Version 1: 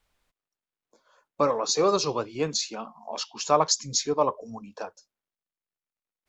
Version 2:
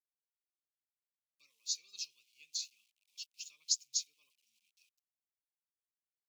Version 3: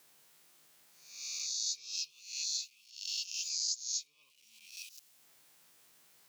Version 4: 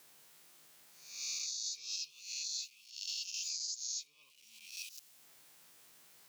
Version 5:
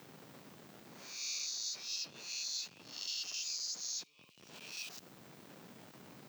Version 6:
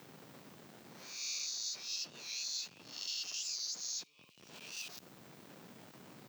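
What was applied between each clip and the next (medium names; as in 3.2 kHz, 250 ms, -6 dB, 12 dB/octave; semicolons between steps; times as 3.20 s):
small samples zeroed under -43.5 dBFS; elliptic high-pass 2.5 kHz, stop band 40 dB; upward expansion 1.5:1, over -46 dBFS; trim -7 dB
reverse spectral sustain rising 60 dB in 0.66 s; peaking EQ 150 Hz +7.5 dB 0.28 oct; three bands compressed up and down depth 100%
peak limiter -32 dBFS, peak gain reduction 11 dB; trim +2.5 dB
in parallel at -10 dB: Schmitt trigger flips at -54 dBFS; on the sum: high-pass 140 Hz 24 dB/octave; peaking EQ 11 kHz -10 dB 0.92 oct; trim +1 dB
warped record 45 rpm, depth 100 cents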